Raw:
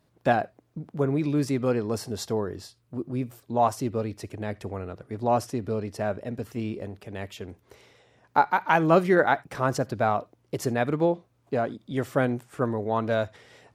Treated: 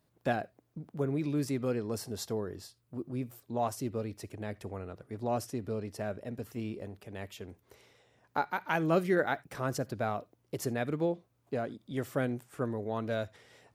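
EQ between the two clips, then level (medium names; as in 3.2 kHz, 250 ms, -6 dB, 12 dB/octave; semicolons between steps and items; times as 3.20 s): dynamic bell 940 Hz, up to -6 dB, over -36 dBFS, Q 1.5; treble shelf 11 kHz +10 dB; -6.5 dB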